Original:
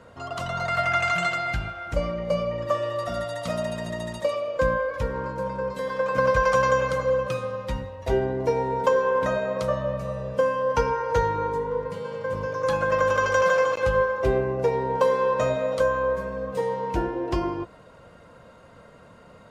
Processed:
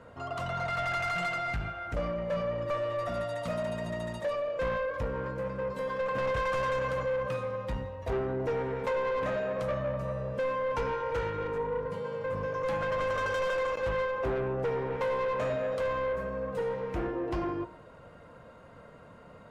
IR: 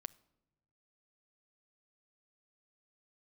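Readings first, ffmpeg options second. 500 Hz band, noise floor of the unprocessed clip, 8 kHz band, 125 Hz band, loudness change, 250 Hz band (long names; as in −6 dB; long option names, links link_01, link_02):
−7.0 dB, −50 dBFS, below −10 dB, −5.5 dB, −7.0 dB, −5.5 dB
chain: -filter_complex "[0:a]asoftclip=type=tanh:threshold=-25dB,bandreject=frequency=186.1:width_type=h:width=4,bandreject=frequency=372.2:width_type=h:width=4,bandreject=frequency=558.3:width_type=h:width=4,bandreject=frequency=744.4:width_type=h:width=4,bandreject=frequency=930.5:width_type=h:width=4,bandreject=frequency=1116.6:width_type=h:width=4,bandreject=frequency=1302.7:width_type=h:width=4,bandreject=frequency=1488.8:width_type=h:width=4,bandreject=frequency=1674.9:width_type=h:width=4,bandreject=frequency=1861:width_type=h:width=4,bandreject=frequency=2047.1:width_type=h:width=4,bandreject=frequency=2233.2:width_type=h:width=4,bandreject=frequency=2419.3:width_type=h:width=4,bandreject=frequency=2605.4:width_type=h:width=4,bandreject=frequency=2791.5:width_type=h:width=4,bandreject=frequency=2977.6:width_type=h:width=4,bandreject=frequency=3163.7:width_type=h:width=4,bandreject=frequency=3349.8:width_type=h:width=4,bandreject=frequency=3535.9:width_type=h:width=4,bandreject=frequency=3722:width_type=h:width=4,bandreject=frequency=3908.1:width_type=h:width=4,bandreject=frequency=4094.2:width_type=h:width=4,bandreject=frequency=4280.3:width_type=h:width=4,bandreject=frequency=4466.4:width_type=h:width=4,bandreject=frequency=4652.5:width_type=h:width=4,bandreject=frequency=4838.6:width_type=h:width=4,bandreject=frequency=5024.7:width_type=h:width=4,bandreject=frequency=5210.8:width_type=h:width=4,bandreject=frequency=5396.9:width_type=h:width=4,bandreject=frequency=5583:width_type=h:width=4,bandreject=frequency=5769.1:width_type=h:width=4,bandreject=frequency=5955.2:width_type=h:width=4,bandreject=frequency=6141.3:width_type=h:width=4,bandreject=frequency=6327.4:width_type=h:width=4,bandreject=frequency=6513.5:width_type=h:width=4,bandreject=frequency=6699.6:width_type=h:width=4,bandreject=frequency=6885.7:width_type=h:width=4,bandreject=frequency=7071.8:width_type=h:width=4,bandreject=frequency=7257.9:width_type=h:width=4,asplit=2[link_01][link_02];[1:a]atrim=start_sample=2205,lowpass=3400[link_03];[link_02][link_03]afir=irnorm=-1:irlink=0,volume=3dB[link_04];[link_01][link_04]amix=inputs=2:normalize=0,volume=-7dB"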